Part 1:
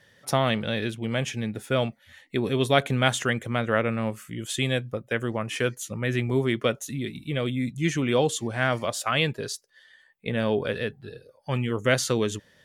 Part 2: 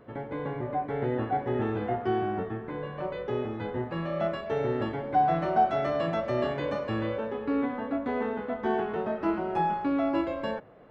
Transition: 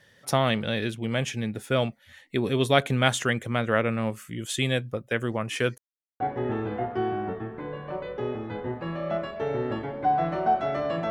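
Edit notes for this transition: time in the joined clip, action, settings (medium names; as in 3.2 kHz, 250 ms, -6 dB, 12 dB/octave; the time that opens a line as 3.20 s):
part 1
5.78–6.20 s: mute
6.20 s: go over to part 2 from 1.30 s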